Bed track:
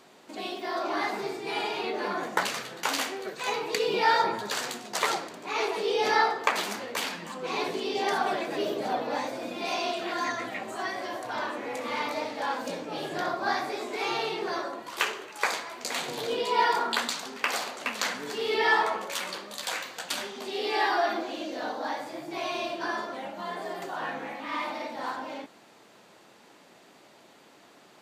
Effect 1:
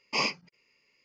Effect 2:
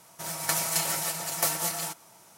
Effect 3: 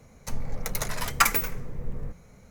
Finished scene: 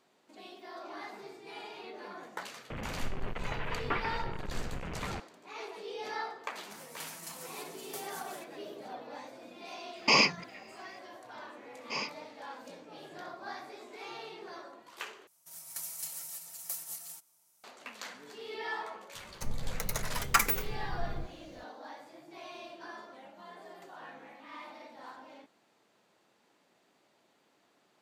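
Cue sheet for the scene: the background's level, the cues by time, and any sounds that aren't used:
bed track −14.5 dB
0:02.70: mix in 3 −6 dB + linear delta modulator 16 kbit/s, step −27 dBFS
0:06.51: mix in 2 −18 dB
0:09.95: mix in 1 −12 dB + boost into a limiter +24 dB
0:11.77: mix in 1 −8.5 dB
0:15.27: overwrite with 2 −12.5 dB + first-order pre-emphasis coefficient 0.8
0:19.14: mix in 3 −4.5 dB

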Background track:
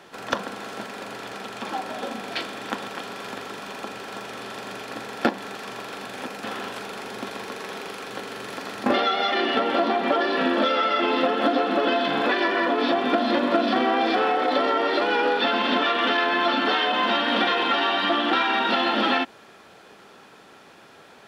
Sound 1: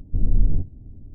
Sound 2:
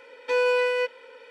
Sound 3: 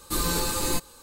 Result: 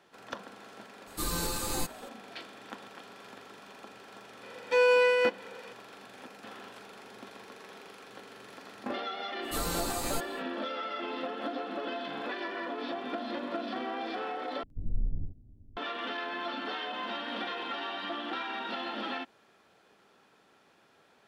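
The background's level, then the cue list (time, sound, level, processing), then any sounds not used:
background track −14.5 dB
0:01.07: mix in 3 −6.5 dB
0:04.43: mix in 2 −0.5 dB
0:09.41: mix in 3 −8 dB, fades 0.05 s
0:14.63: overwrite with 1 −15 dB + single-tap delay 72 ms −4.5 dB

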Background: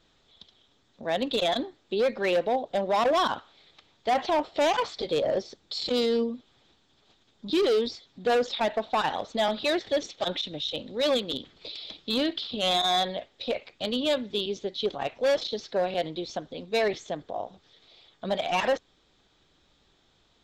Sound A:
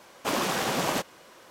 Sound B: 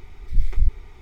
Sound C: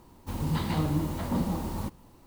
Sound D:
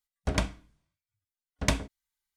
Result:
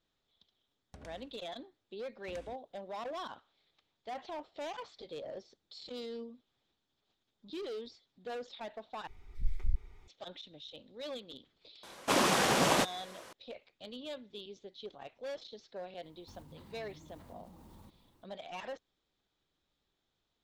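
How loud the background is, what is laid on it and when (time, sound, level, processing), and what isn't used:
background −17.5 dB
0:00.67: mix in D −10.5 dB + downward compressor 12 to 1, threshold −37 dBFS
0:09.07: overwrite with B −13.5 dB
0:11.83: mix in A + variable-slope delta modulation 64 kbit/s
0:16.01: mix in C −13 dB, fades 0.05 s + downward compressor 12 to 1, threshold −38 dBFS

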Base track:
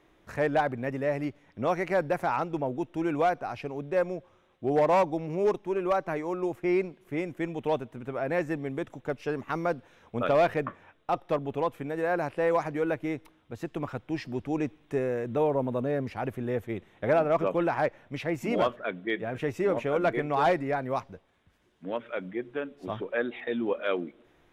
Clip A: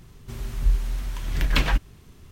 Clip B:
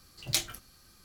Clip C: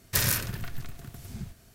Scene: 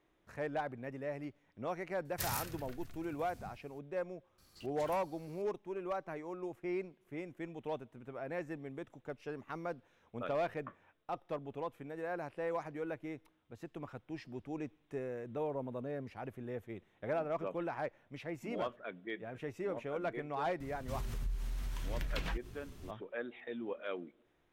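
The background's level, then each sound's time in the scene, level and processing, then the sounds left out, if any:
base track −12 dB
0:02.05: mix in C −13.5 dB
0:04.38: mix in B −14.5 dB + compressor whose output falls as the input rises −42 dBFS, ratio −0.5
0:20.60: mix in A −3 dB + downward compressor 4 to 1, threshold −33 dBFS

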